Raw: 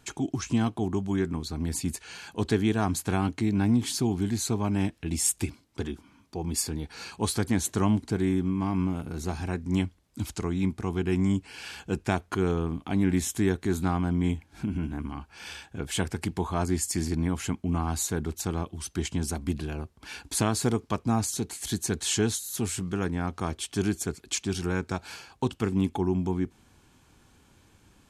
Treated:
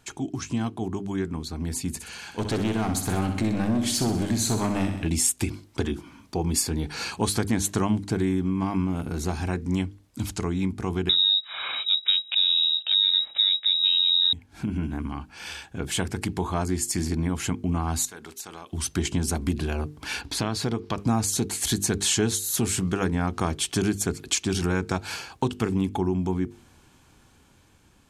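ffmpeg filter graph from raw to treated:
-filter_complex "[0:a]asettb=1/sr,asplit=3[s0][s1][s2];[s0]atrim=end=1.904[s3];[s1]atrim=start=1.9:end=5.08,asetpts=PTS-STARTPTS,afade=t=in:d=0.004:c=qsin,afade=t=out:st=3.176:d=0.004:c=qsin,asoftclip=type=hard:threshold=0.0708,aecho=1:1:63|126|189|252|315|378:0.398|0.207|0.108|0.056|0.0291|0.0151,atrim=end_sample=140238[s4];[s2]atrim=start=5.076[s5];[s3][s4]acrossfade=d=0.004:c1=hsin:c2=qsin[s6];[s6][s5]acrossfade=d=0.004:c1=qsin:c2=hsin,asettb=1/sr,asplit=3[s7][s8][s9];[s7]atrim=end=11.094[s10];[s8]atrim=start=11.09:end=14.33,asetpts=PTS-STARTPTS,afade=t=in:d=0.004:c=qsin,afade=t=out:st=3.236:d=0.004:c=qsin,aemphasis=mode=reproduction:type=riaa,acompressor=mode=upward:threshold=0.0631:ratio=2.5:attack=3.2:release=140:knee=2.83:detection=peak,lowpass=f=3300:t=q:w=0.5098,lowpass=f=3300:t=q:w=0.6013,lowpass=f=3300:t=q:w=0.9,lowpass=f=3300:t=q:w=2.563,afreqshift=-3900[s11];[s9]atrim=start=14.326[s12];[s10][s11]acrossfade=d=0.004:c1=hsin:c2=qsin[s13];[s13][s12]acrossfade=d=0.004:c1=qsin:c2=hsin,asettb=1/sr,asplit=3[s14][s15][s16];[s14]atrim=end=18.054[s17];[s15]atrim=start=18.05:end=18.73,asetpts=PTS-STARTPTS,afade=t=in:d=0.004:c=qsin,afade=t=out:st=0.676:d=0.004:c=qsin,highpass=f=1300:p=1,acompressor=threshold=0.00631:ratio=3:attack=3.2:release=140:knee=1:detection=peak[s18];[s16]atrim=start=18.726[s19];[s17][s18]acrossfade=d=0.004:c1=hsin:c2=qsin[s20];[s20][s19]acrossfade=d=0.004:c1=qsin:c2=hsin,asettb=1/sr,asplit=3[s21][s22][s23];[s21]atrim=end=20.214[s24];[s22]atrim=start=20.21:end=20.98,asetpts=PTS-STARTPTS,afade=t=in:d=0.004:c=qsin,afade=t=out:st=0.766:d=0.004:c=qsin,highshelf=f=6000:t=q:w=1.5:g=-7.5,acompressor=threshold=0.00631:ratio=1.5:attack=3.2:release=140:knee=1:detection=peak[s25];[s23]atrim=start=20.976[s26];[s24][s25]acrossfade=d=0.004:c1=hsin:c2=qsin[s27];[s27][s26]acrossfade=d=0.004:c1=qsin:c2=hsin,dynaudnorm=f=950:g=7:m=3.55,bandreject=f=50:t=h:w=6,bandreject=f=100:t=h:w=6,bandreject=f=150:t=h:w=6,bandreject=f=200:t=h:w=6,bandreject=f=250:t=h:w=6,bandreject=f=300:t=h:w=6,bandreject=f=350:t=h:w=6,bandreject=f=400:t=h:w=6,bandreject=f=450:t=h:w=6,acompressor=threshold=0.0708:ratio=2.5"

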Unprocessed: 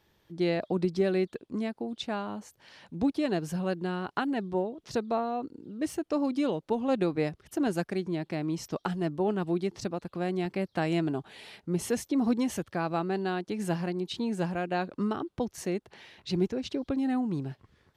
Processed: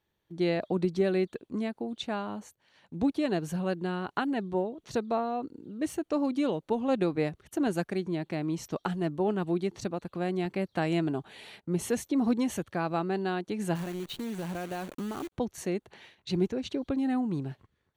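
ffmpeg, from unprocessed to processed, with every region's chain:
-filter_complex "[0:a]asettb=1/sr,asplit=3[s0][s1][s2];[s0]atrim=end=13.754[s3];[s1]atrim=start=13.75:end=15.32,asetpts=PTS-STARTPTS,afade=t=in:d=0.004:c=qsin,afade=t=out:st=1.566:d=0.004:c=qsin,highshelf=f=6600:g=-10.5,acompressor=threshold=0.0282:ratio=10:attack=3.2:release=140:knee=1:detection=peak,acrusher=bits=8:dc=4:mix=0:aa=0.000001[s4];[s2]atrim=start=15.316[s5];[s3][s4]acrossfade=d=0.004:c1=hsin:c2=qsin[s6];[s6][s5]acrossfade=d=0.004:c1=qsin:c2=hsin,bandreject=f=5100:w=6.6,agate=range=0.251:threshold=0.00282:ratio=16:detection=peak"

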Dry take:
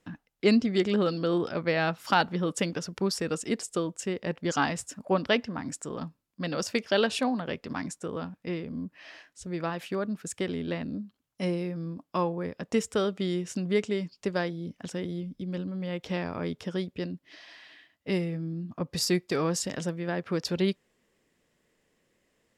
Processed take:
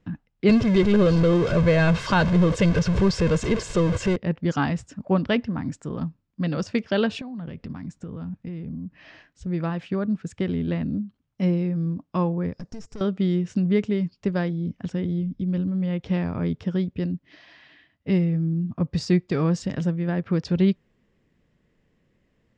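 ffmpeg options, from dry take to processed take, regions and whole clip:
-filter_complex "[0:a]asettb=1/sr,asplit=3[s0][s1][s2];[s0]atrim=end=0.494[s3];[s1]atrim=start=0.49:end=4.16,asetpts=PTS-STARTPTS,afade=t=in:d=0.004:c=qsin,afade=t=out:st=3.666:d=0.004:c=qsin,aeval=exprs='val(0)+0.5*0.0531*sgn(val(0))':c=same,aecho=1:1:1.9:0.62,atrim=end_sample=161847[s4];[s2]atrim=start=4.156[s5];[s3][s4]acrossfade=d=0.004:c1=hsin:c2=qsin[s6];[s6][s5]acrossfade=d=0.004:c1=qsin:c2=hsin,asettb=1/sr,asplit=3[s7][s8][s9];[s7]atrim=end=7.214[s10];[s8]atrim=start=7.21:end=9.27,asetpts=PTS-STARTPTS,afade=t=in:d=0.004:c=qsin,afade=t=out:st=2.056:d=0.004:c=qsin,bass=f=250:g=6,treble=f=4000:g=1,acompressor=threshold=0.0126:ratio=10:attack=3.2:release=140:knee=1:detection=peak[s11];[s9]atrim=start=9.266[s12];[s10][s11]acrossfade=d=0.004:c1=hsin:c2=qsin[s13];[s13][s12]acrossfade=d=0.004:c1=qsin:c2=hsin,asettb=1/sr,asplit=3[s14][s15][s16];[s14]atrim=end=12.534[s17];[s15]atrim=start=12.53:end=13.01,asetpts=PTS-STARTPTS,afade=t=in:d=0.004:c=qsin,afade=t=out:st=0.476:d=0.004:c=qsin,highshelf=f=4000:t=q:w=3:g=9,acompressor=threshold=0.0224:ratio=16:attack=3.2:release=140:knee=1:detection=peak,aeval=exprs='(tanh(70.8*val(0)+0.45)-tanh(0.45))/70.8':c=same[s18];[s16]atrim=start=13.006[s19];[s17][s18]acrossfade=d=0.004:c1=hsin:c2=qsin[s20];[s20][s19]acrossfade=d=0.004:c1=qsin:c2=hsin,lowpass=f=7200:w=0.5412,lowpass=f=7200:w=1.3066,bass=f=250:g=13,treble=f=4000:g=-8"

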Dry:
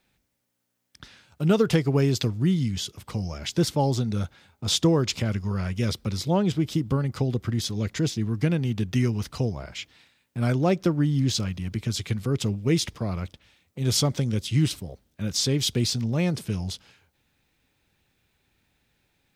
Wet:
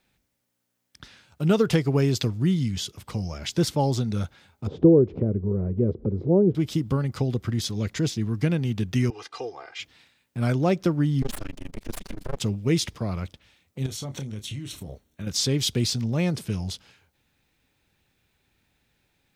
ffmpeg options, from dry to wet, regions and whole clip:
-filter_complex "[0:a]asettb=1/sr,asplit=3[s0][s1][s2];[s0]atrim=end=4.674[s3];[s1]atrim=start=4.67:end=6.55,asetpts=PTS-STARTPTS,afade=t=in:d=0.004:c=qsin,afade=t=out:st=1.876:d=0.004:c=qsin,lowpass=f=420:t=q:w=3.1,acompressor=mode=upward:threshold=0.0794:ratio=2.5:attack=3.2:release=140:knee=2.83:detection=peak[s4];[s2]atrim=start=6.546[s5];[s3][s4]acrossfade=d=0.004:c1=hsin:c2=qsin[s6];[s6][s5]acrossfade=d=0.004:c1=qsin:c2=hsin,asettb=1/sr,asplit=3[s7][s8][s9];[s7]atrim=end=9.104[s10];[s8]atrim=start=9.1:end=9.8,asetpts=PTS-STARTPTS,afade=t=in:d=0.004:c=qsin,afade=t=out:st=0.696:d=0.004:c=qsin,highpass=570,lowpass=5500,aecho=1:1:2.5:0.97,atrim=end_sample=30870,adynamicequalizer=threshold=0.00224:dfrequency=2200:dqfactor=0.7:tfrequency=2200:tqfactor=0.7:attack=5:release=100:ratio=0.375:range=2.5:mode=cutabove:tftype=highshelf[s11];[s9]atrim=start=9.796[s12];[s10][s11]acrossfade=d=0.004:c1=hsin:c2=qsin[s13];[s13][s12]acrossfade=d=0.004:c1=qsin:c2=hsin,asettb=1/sr,asplit=3[s14][s15][s16];[s14]atrim=end=11.224[s17];[s15]atrim=start=11.22:end=12.4,asetpts=PTS-STARTPTS,afade=t=in:d=0.004:c=qsin,afade=t=out:st=1.176:d=0.004:c=qsin,aeval=exprs='abs(val(0))':c=same,tremolo=f=25:d=1[s18];[s16]atrim=start=12.396[s19];[s17][s18]acrossfade=d=0.004:c1=hsin:c2=qsin[s20];[s20][s19]acrossfade=d=0.004:c1=qsin:c2=hsin,asettb=1/sr,asplit=3[s21][s22][s23];[s21]atrim=end=13.864[s24];[s22]atrim=start=13.86:end=15.27,asetpts=PTS-STARTPTS,afade=t=in:d=0.004:c=qsin,afade=t=out:st=1.406:d=0.004:c=qsin,acompressor=threshold=0.0316:ratio=16:attack=3.2:release=140:knee=1:detection=peak,asuperstop=centerf=4900:order=4:qfactor=7.2,asplit=2[s25][s26];[s26]adelay=29,volume=0.355[s27];[s25][s27]amix=inputs=2:normalize=0,atrim=end_sample=62181[s28];[s23]atrim=start=15.266[s29];[s24][s28]acrossfade=d=0.004:c1=hsin:c2=qsin[s30];[s30][s29]acrossfade=d=0.004:c1=qsin:c2=hsin"

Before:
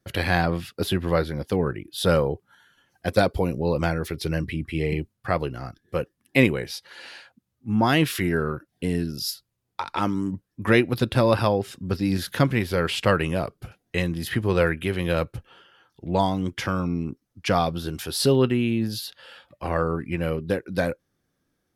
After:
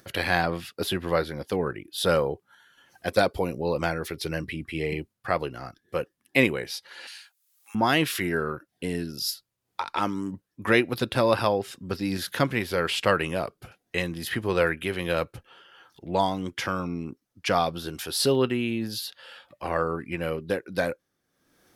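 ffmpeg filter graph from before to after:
-filter_complex "[0:a]asettb=1/sr,asplit=3[s0][s1][s2];[s0]atrim=end=7.074[s3];[s1]atrim=start=7.07:end=7.75,asetpts=PTS-STARTPTS,afade=t=in:d=0.004:c=qsin,afade=t=out:st=0.676:d=0.004:c=qsin,highpass=f=750:w=0.5412,highpass=f=750:w=1.3066,aderivative,acontrast=87[s4];[s2]atrim=start=7.746[s5];[s3][s4]acrossfade=d=0.004:c1=hsin:c2=qsin[s6];[s6][s5]acrossfade=d=0.004:c1=qsin:c2=hsin,acompressor=mode=upward:threshold=0.00708:ratio=2.5,lowshelf=f=220:g=-10.5"

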